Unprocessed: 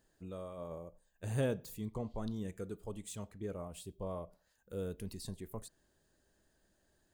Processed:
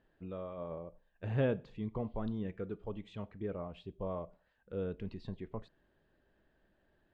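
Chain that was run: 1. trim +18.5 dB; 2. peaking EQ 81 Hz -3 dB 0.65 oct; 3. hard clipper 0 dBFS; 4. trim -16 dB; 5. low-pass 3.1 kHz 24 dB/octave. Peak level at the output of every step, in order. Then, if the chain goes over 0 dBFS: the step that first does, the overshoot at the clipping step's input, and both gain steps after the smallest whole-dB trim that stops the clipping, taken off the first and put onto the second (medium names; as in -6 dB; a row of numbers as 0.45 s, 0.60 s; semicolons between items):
-4.0 dBFS, -4.0 dBFS, -4.0 dBFS, -20.0 dBFS, -20.5 dBFS; nothing clips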